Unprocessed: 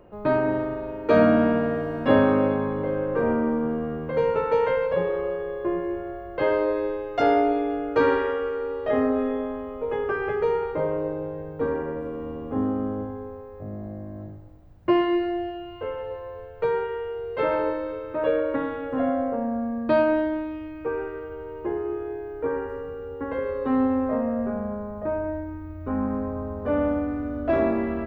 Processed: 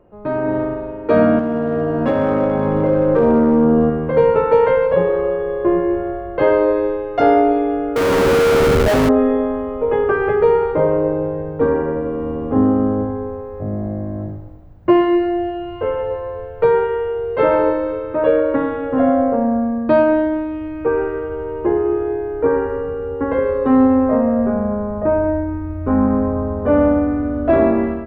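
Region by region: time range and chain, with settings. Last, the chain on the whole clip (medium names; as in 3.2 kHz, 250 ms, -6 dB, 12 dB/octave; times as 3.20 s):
1.39–3.90 s: compression, threshold -23 dBFS + hard clipper -21.5 dBFS + doubling 13 ms -6 dB
7.96–9.09 s: CVSD coder 32 kbps + Schmitt trigger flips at -29.5 dBFS
whole clip: treble shelf 2.5 kHz -10.5 dB; level rider gain up to 13 dB; trim -1 dB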